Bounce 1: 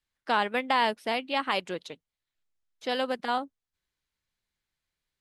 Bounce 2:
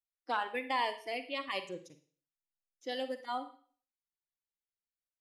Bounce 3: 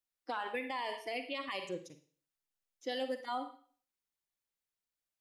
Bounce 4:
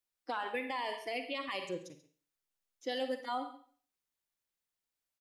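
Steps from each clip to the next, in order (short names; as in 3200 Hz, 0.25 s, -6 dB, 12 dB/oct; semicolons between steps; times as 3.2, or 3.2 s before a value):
spectral noise reduction 16 dB; Schroeder reverb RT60 0.46 s, DRR 10 dB; gain -7 dB
limiter -30 dBFS, peak gain reduction 10.5 dB; gain +2.5 dB
echo 0.136 s -17 dB; gain +1 dB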